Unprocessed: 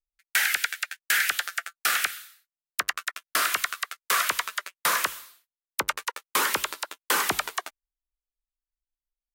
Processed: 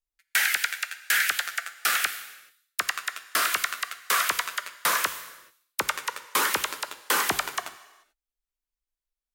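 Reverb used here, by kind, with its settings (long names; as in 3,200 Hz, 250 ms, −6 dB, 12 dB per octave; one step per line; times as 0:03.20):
reverb whose tail is shaped and stops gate 460 ms falling, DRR 12 dB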